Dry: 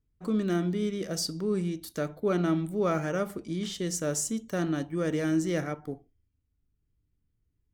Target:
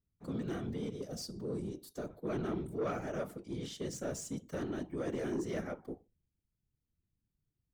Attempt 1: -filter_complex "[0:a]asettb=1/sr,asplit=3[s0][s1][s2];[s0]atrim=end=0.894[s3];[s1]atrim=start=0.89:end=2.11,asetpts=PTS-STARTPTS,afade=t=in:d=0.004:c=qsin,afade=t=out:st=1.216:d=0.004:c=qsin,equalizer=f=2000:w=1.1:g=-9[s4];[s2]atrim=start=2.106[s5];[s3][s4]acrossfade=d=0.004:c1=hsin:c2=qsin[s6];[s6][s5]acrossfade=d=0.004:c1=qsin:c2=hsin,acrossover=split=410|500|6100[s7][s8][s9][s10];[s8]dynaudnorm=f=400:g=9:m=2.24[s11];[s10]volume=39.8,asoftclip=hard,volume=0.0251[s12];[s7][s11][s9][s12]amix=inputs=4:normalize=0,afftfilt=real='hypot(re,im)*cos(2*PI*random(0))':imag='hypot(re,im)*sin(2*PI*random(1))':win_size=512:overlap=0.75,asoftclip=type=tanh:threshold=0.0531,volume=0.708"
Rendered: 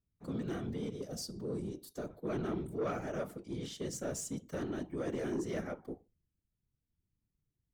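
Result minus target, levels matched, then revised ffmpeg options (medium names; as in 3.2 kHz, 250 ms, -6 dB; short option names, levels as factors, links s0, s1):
overload inside the chain: distortion -8 dB
-filter_complex "[0:a]asettb=1/sr,asplit=3[s0][s1][s2];[s0]atrim=end=0.894[s3];[s1]atrim=start=0.89:end=2.11,asetpts=PTS-STARTPTS,afade=t=in:d=0.004:c=qsin,afade=t=out:st=1.216:d=0.004:c=qsin,equalizer=f=2000:w=1.1:g=-9[s4];[s2]atrim=start=2.106[s5];[s3][s4]acrossfade=d=0.004:c1=hsin:c2=qsin[s6];[s6][s5]acrossfade=d=0.004:c1=qsin:c2=hsin,acrossover=split=410|500|6100[s7][s8][s9][s10];[s8]dynaudnorm=f=400:g=9:m=2.24[s11];[s10]volume=106,asoftclip=hard,volume=0.00944[s12];[s7][s11][s9][s12]amix=inputs=4:normalize=0,afftfilt=real='hypot(re,im)*cos(2*PI*random(0))':imag='hypot(re,im)*sin(2*PI*random(1))':win_size=512:overlap=0.75,asoftclip=type=tanh:threshold=0.0531,volume=0.708"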